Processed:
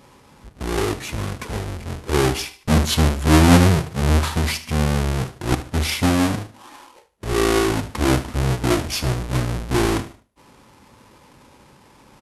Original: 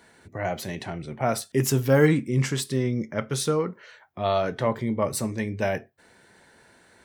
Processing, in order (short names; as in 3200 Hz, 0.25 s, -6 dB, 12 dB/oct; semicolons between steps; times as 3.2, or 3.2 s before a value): half-waves squared off; speed mistake 78 rpm record played at 45 rpm; feedback echo 75 ms, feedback 30%, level -15.5 dB; gain +1.5 dB